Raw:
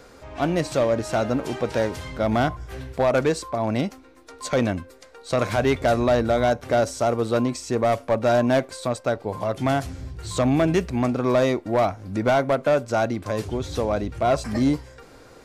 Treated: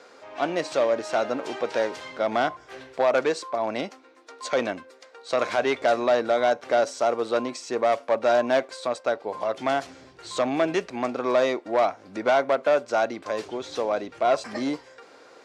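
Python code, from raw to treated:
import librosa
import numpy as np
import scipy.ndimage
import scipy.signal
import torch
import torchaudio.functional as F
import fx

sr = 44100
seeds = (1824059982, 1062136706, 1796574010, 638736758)

y = fx.bandpass_edges(x, sr, low_hz=400.0, high_hz=6200.0)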